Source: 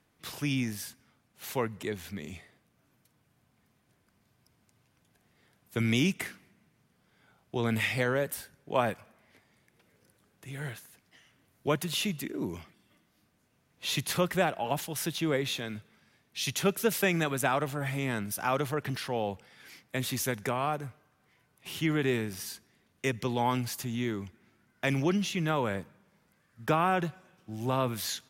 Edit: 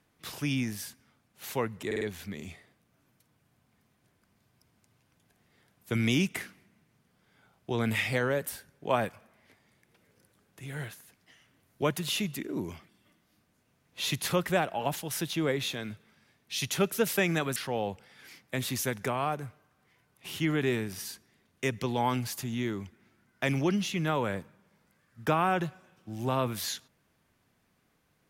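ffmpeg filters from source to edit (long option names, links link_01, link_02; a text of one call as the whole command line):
ffmpeg -i in.wav -filter_complex "[0:a]asplit=5[link_01][link_02][link_03][link_04][link_05];[link_01]atrim=end=1.912[link_06];[link_02]atrim=start=1.858:end=1.912[link_07];[link_03]atrim=start=1.858:end=1.912[link_08];[link_04]atrim=start=1.858:end=17.412[link_09];[link_05]atrim=start=18.968[link_10];[link_06][link_07]acrossfade=duration=0.004:curve1=hsin:curve2=hsin[link_11];[link_11][link_08]acrossfade=duration=0.004:curve1=hsin:curve2=hsin[link_12];[link_12][link_09]acrossfade=duration=0.004:curve1=hsin:curve2=hsin[link_13];[link_13][link_10]acrossfade=duration=0.004:curve1=hsin:curve2=hsin" out.wav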